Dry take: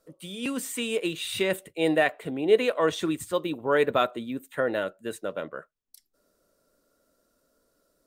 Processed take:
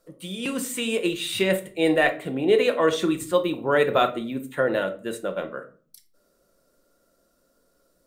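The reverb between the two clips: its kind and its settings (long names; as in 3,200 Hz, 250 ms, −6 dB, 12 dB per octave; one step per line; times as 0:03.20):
rectangular room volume 350 cubic metres, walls furnished, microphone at 0.88 metres
level +2.5 dB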